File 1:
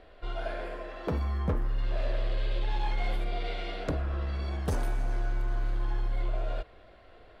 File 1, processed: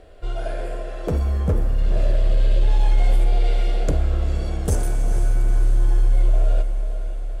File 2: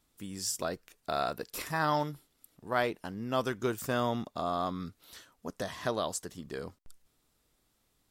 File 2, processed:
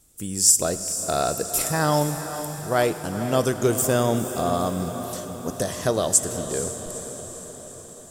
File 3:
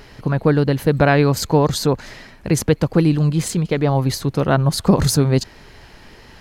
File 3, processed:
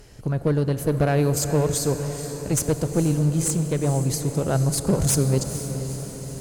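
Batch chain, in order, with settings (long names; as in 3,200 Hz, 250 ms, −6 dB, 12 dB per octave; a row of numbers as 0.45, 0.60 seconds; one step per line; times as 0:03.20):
graphic EQ with 10 bands 250 Hz −5 dB, 1,000 Hz −9 dB, 2,000 Hz −7 dB, 4,000 Hz −8 dB, 8,000 Hz +9 dB
asymmetric clip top −18.5 dBFS
on a send: feedback delay with all-pass diffusion 468 ms, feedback 62%, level −10.5 dB
on the sum: four-comb reverb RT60 3.4 s, combs from 27 ms, DRR 12.5 dB
loudness normalisation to −23 LKFS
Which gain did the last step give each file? +10.0, +13.5, −2.5 decibels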